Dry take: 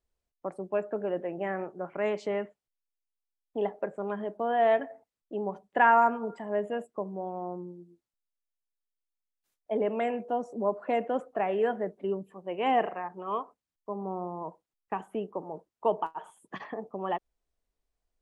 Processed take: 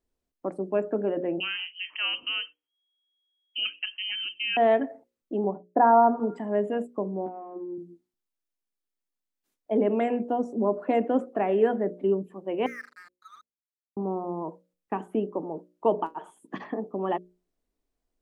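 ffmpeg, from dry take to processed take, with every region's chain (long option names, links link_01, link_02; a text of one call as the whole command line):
ffmpeg -i in.wav -filter_complex "[0:a]asettb=1/sr,asplit=3[link_01][link_02][link_03];[link_01]atrim=end=1.404[link_04];[link_02]atrim=start=1.4:end=4.57,asetpts=PTS-STARTPTS,afade=type=in:duration=0.004:curve=qsin,afade=type=out:start_time=3.166:duration=0.004:curve=qsin,asubboost=boost=3.5:cutoff=220,lowpass=frequency=2800:width_type=q:width=0.5098,lowpass=frequency=2800:width_type=q:width=0.6013,lowpass=frequency=2800:width_type=q:width=0.9,lowpass=frequency=2800:width_type=q:width=2.563,afreqshift=-3300[link_05];[link_03]atrim=start=4.566[link_06];[link_04][link_05]acrossfade=duration=0.004:curve1=hsin:curve2=qsin[link_07];[link_07][link_06]acrossfade=duration=0.004:curve1=qsin:curve2=hsin,asettb=1/sr,asplit=3[link_08][link_09][link_10];[link_08]atrim=end=5.444[link_11];[link_09]atrim=start=5.44:end=6.2,asetpts=PTS-STARTPTS,afade=type=in:duration=0.004:curve=qsin,afade=type=out:start_time=0.756:duration=0.004:curve=qsin,lowpass=frequency=1200:width=0.5412,lowpass=frequency=1200:width=1.3066,agate=range=-33dB:threshold=-54dB:ratio=3:release=100:detection=peak,equalizer=frequency=700:width_type=o:width=0.23:gain=5[link_12];[link_10]atrim=start=6.196[link_13];[link_11][link_12]acrossfade=duration=0.004:curve1=hsin:curve2=qsin[link_14];[link_14][link_13]acrossfade=duration=0.004:curve1=qsin:curve2=hsin,asettb=1/sr,asplit=3[link_15][link_16][link_17];[link_15]atrim=end=7.264[link_18];[link_16]atrim=start=7.26:end=7.78,asetpts=PTS-STARTPTS,afade=type=in:duration=0.004:curve=qsin,afade=type=out:start_time=0.516:duration=0.004:curve=qsin,highpass=280,equalizer=frequency=340:width_type=q:width=4:gain=5,equalizer=frequency=550:width_type=q:width=4:gain=-6,equalizer=frequency=1600:width_type=q:width=4:gain=7,lowpass=frequency=2700:width=0.5412,lowpass=frequency=2700:width=1.3066,acompressor=threshold=-39dB:ratio=3:attack=3.2:release=140:knee=1:detection=peak,asplit=2[link_19][link_20];[link_20]adelay=15,volume=-3dB[link_21];[link_19][link_21]amix=inputs=2:normalize=0,atrim=end_sample=22932[link_22];[link_17]atrim=start=7.776[link_23];[link_18][link_22]acrossfade=duration=0.004:curve1=hsin:curve2=qsin[link_24];[link_24][link_23]acrossfade=duration=0.004:curve1=qsin:curve2=hsin,asettb=1/sr,asplit=3[link_25][link_26][link_27];[link_25]atrim=end=12.664[link_28];[link_26]atrim=start=12.66:end=13.97,asetpts=PTS-STARTPTS,afade=type=in:duration=0.004:curve=qsin,afade=type=out:start_time=1.306:duration=0.004:curve=qsin,asuperpass=centerf=1700:order=20:qfactor=1.5,aeval=exprs='sgn(val(0))*max(abs(val(0))-0.00237,0)':channel_layout=same[link_29];[link_27]atrim=start=13.966[link_30];[link_28][link_29]acrossfade=duration=0.004:curve1=hsin:curve2=qsin[link_31];[link_31][link_30]acrossfade=duration=0.004:curve1=qsin:curve2=hsin,equalizer=frequency=280:width=1.1:gain=11.5,bandreject=frequency=60:width_type=h:width=6,bandreject=frequency=120:width_type=h:width=6,bandreject=frequency=180:width_type=h:width=6,bandreject=frequency=240:width_type=h:width=6,bandreject=frequency=300:width_type=h:width=6,bandreject=frequency=360:width_type=h:width=6,bandreject=frequency=420:width_type=h:width=6,bandreject=frequency=480:width_type=h:width=6,bandreject=frequency=540:width_type=h:width=6,bandreject=frequency=600:width_type=h:width=6" out.wav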